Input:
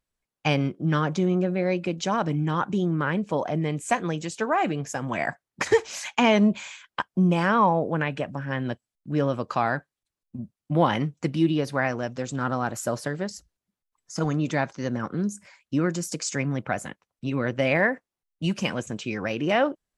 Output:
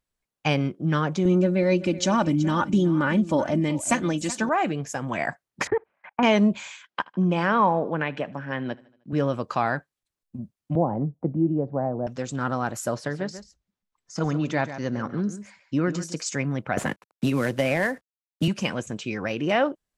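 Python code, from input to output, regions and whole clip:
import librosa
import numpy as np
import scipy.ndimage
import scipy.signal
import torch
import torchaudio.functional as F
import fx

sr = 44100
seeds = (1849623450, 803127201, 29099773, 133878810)

y = fx.chain(x, sr, fx.bass_treble(bass_db=9, treble_db=6),
    fx.comb(ms=3.4, depth=0.61),
    fx.echo_single(ms=377, db=-16.0), at=(1.25, 4.49))
y = fx.chain(y, sr, fx.lowpass(hz=1700.0, slope=24),
    fx.level_steps(step_db=22),
    fx.transient(attack_db=2, sustain_db=-9), at=(5.67, 6.23))
y = fx.chain(y, sr, fx.bandpass_edges(low_hz=160.0, high_hz=5000.0),
    fx.echo_feedback(ms=77, feedback_pct=56, wet_db=-23.0), at=(6.87, 9.13))
y = fx.chain(y, sr, fx.cheby1_lowpass(hz=760.0, order=3),
    fx.band_squash(depth_pct=40), at=(10.75, 12.07))
y = fx.chain(y, sr, fx.lowpass(hz=6300.0, slope=12),
    fx.echo_single(ms=139, db=-12.0), at=(12.94, 16.26))
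y = fx.chain(y, sr, fx.cvsd(bps=64000),
    fx.band_squash(depth_pct=100), at=(16.77, 18.48))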